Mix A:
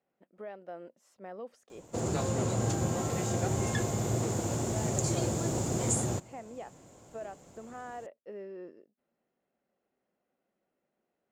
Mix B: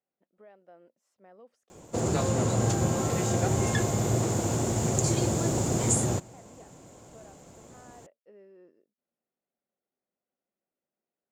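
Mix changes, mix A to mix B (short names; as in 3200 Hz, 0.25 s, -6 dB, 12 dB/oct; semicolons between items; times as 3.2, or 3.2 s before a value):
speech -10.5 dB; background +4.5 dB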